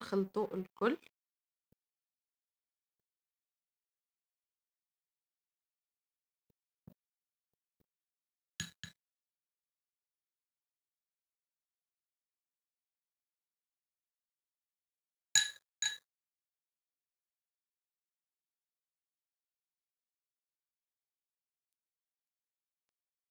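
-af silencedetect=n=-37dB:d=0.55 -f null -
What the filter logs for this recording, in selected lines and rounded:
silence_start: 0.95
silence_end: 8.60 | silence_duration: 7.65
silence_start: 8.85
silence_end: 15.35 | silence_duration: 6.51
silence_start: 15.93
silence_end: 23.30 | silence_duration: 7.37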